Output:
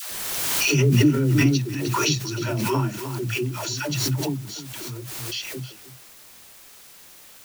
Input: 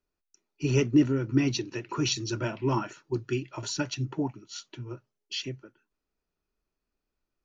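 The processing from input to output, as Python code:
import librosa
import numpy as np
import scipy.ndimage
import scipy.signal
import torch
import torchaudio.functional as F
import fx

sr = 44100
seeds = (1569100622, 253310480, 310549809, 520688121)

p1 = fx.dynamic_eq(x, sr, hz=160.0, q=1.6, threshold_db=-40.0, ratio=4.0, max_db=6)
p2 = fx.hpss(p1, sr, part='percussive', gain_db=-5)
p3 = fx.high_shelf(p2, sr, hz=2100.0, db=6.0)
p4 = fx.quant_dither(p3, sr, seeds[0], bits=6, dither='triangular')
p5 = p3 + F.gain(torch.from_numpy(p4), -11.5).numpy()
p6 = fx.dispersion(p5, sr, late='lows', ms=119.0, hz=480.0)
p7 = p6 + fx.echo_single(p6, sr, ms=307, db=-14.0, dry=0)
y = fx.pre_swell(p7, sr, db_per_s=22.0)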